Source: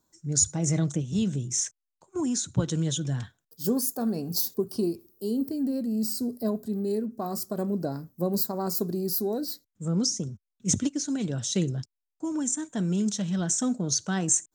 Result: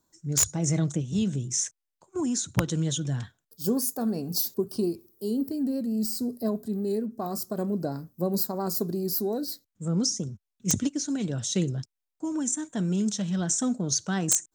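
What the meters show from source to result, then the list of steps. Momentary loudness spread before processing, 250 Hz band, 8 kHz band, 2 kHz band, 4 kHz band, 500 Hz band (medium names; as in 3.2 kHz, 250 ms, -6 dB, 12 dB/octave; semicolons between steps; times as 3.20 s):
7 LU, 0.0 dB, 0.0 dB, +1.5 dB, 0.0 dB, 0.0 dB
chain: vibrato 5.6 Hz 29 cents; integer overflow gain 12 dB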